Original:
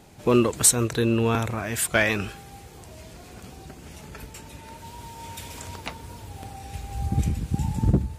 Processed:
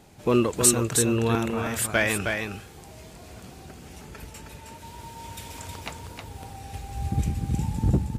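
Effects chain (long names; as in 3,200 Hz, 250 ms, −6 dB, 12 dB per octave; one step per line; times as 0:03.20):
single-tap delay 315 ms −5 dB
level −2 dB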